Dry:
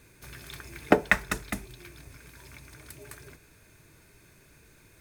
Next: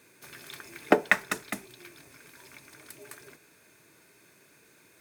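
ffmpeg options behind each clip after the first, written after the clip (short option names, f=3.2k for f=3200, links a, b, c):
-af "highpass=230"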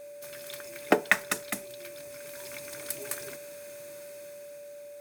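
-af "highshelf=f=4.7k:g=9,dynaudnorm=f=220:g=9:m=8.5dB,aeval=exprs='val(0)+0.01*sin(2*PI*580*n/s)':c=same,volume=-2.5dB"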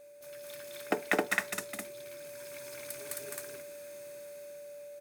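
-af "aecho=1:1:209.9|265.3:0.794|1,volume=-8.5dB"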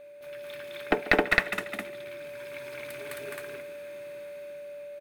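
-af "highshelf=f=4.3k:t=q:w=1.5:g=-12,aecho=1:1:141|282|423|564|705:0.126|0.0692|0.0381|0.0209|0.0115,aeval=exprs='0.335*(cos(1*acos(clip(val(0)/0.335,-1,1)))-cos(1*PI/2))+0.106*(cos(2*acos(clip(val(0)/0.335,-1,1)))-cos(2*PI/2))':c=same,volume=5.5dB"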